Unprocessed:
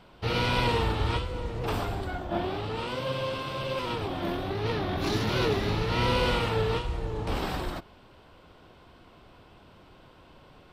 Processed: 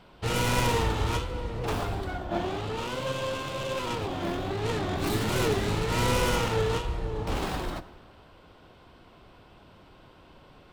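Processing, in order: tracing distortion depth 0.19 ms; plate-style reverb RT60 1.8 s, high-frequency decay 0.5×, DRR 14 dB

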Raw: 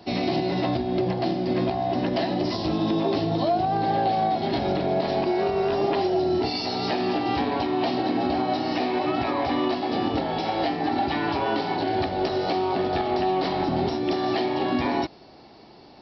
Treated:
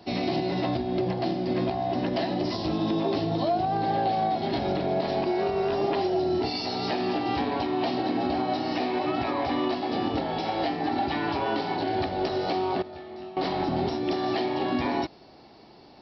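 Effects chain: 12.82–13.37 s: chord resonator D2 minor, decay 0.47 s; trim -2.5 dB

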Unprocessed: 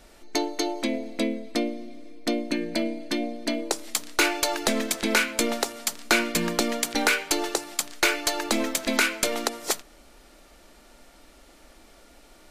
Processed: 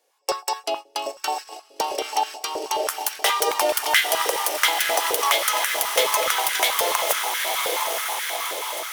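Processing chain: gliding tape speed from 123% -> 157%; echo that smears into a reverb 958 ms, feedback 69%, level -6 dB; in parallel at 0 dB: peak limiter -16.5 dBFS, peak gain reduction 9 dB; on the sum: treble shelf 2.7 kHz +9 dB; gate -22 dBFS, range -20 dB; dynamic bell 6.7 kHz, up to -5 dB, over -28 dBFS, Q 0.76; step-sequenced high-pass 9.4 Hz 500–1600 Hz; trim -6.5 dB

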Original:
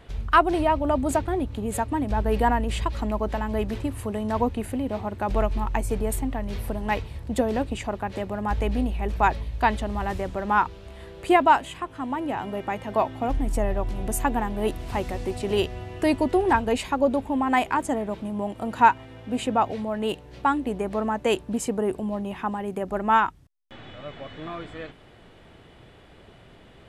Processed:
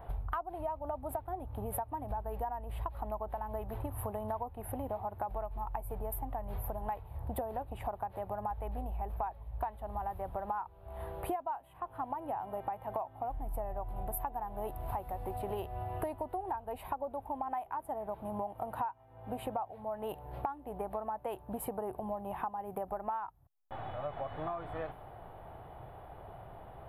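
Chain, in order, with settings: FFT filter 130 Hz 0 dB, 230 Hz -10 dB, 500 Hz -2 dB, 770 Hz +10 dB, 2 kHz -9 dB, 3.8 kHz -14 dB, 6.6 kHz -29 dB, 12 kHz +10 dB; compression 16:1, threshold -35 dBFS, peak gain reduction 30 dB; tape noise reduction on one side only decoder only; trim +1 dB

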